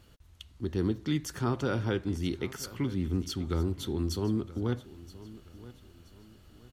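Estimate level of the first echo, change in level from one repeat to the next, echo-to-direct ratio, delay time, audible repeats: -18.0 dB, -9.0 dB, -17.5 dB, 975 ms, 2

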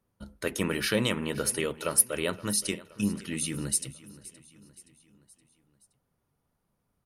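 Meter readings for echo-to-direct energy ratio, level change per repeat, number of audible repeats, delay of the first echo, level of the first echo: -17.5 dB, -5.5 dB, 3, 521 ms, -19.0 dB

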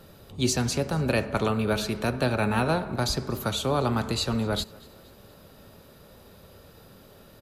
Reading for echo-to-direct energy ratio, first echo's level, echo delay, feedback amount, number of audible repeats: -23.0 dB, -24.0 dB, 237 ms, 49%, 2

